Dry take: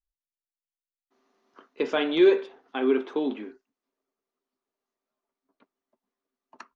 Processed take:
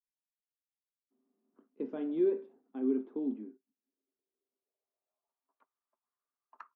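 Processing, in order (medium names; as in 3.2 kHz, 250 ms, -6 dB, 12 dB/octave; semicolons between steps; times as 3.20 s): band-pass sweep 230 Hz -> 1.2 kHz, 3.75–5.76 s; trim -2 dB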